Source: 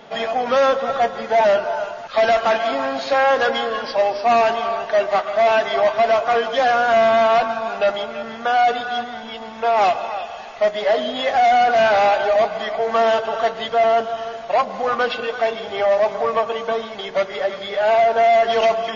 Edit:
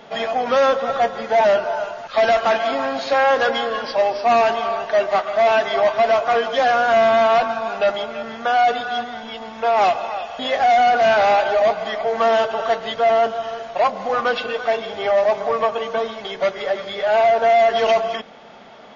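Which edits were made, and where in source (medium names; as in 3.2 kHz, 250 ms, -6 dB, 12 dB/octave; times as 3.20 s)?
10.39–11.13 s: delete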